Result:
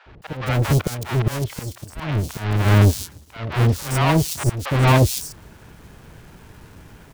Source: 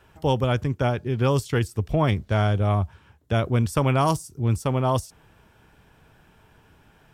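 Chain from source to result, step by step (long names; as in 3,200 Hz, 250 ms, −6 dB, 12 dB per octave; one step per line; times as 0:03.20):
each half-wave held at its own peak
volume swells 564 ms
three-band delay without the direct sound mids, lows, highs 60/220 ms, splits 690/4,000 Hz
level +7 dB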